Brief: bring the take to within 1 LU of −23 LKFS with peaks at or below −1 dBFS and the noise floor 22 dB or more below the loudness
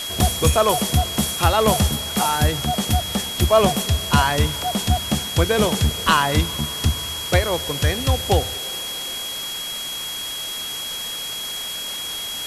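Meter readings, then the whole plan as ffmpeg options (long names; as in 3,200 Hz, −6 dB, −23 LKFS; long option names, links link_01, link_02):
interfering tone 3,300 Hz; level of the tone −28 dBFS; background noise floor −29 dBFS; target noise floor −43 dBFS; integrated loudness −20.5 LKFS; sample peak −3.5 dBFS; target loudness −23.0 LKFS
→ -af "bandreject=frequency=3300:width=30"
-af "afftdn=noise_reduction=14:noise_floor=-29"
-af "volume=-2.5dB"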